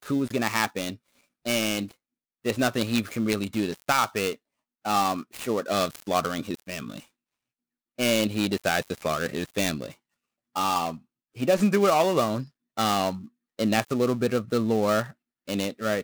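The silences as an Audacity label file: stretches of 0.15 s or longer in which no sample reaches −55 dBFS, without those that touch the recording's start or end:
1.250000	1.450000	silence
1.960000	2.440000	silence
4.360000	4.850000	silence
7.090000	7.980000	silence
9.960000	10.550000	silence
11.040000	11.350000	silence
12.500000	12.770000	silence
13.290000	13.590000	silence
15.130000	15.480000	silence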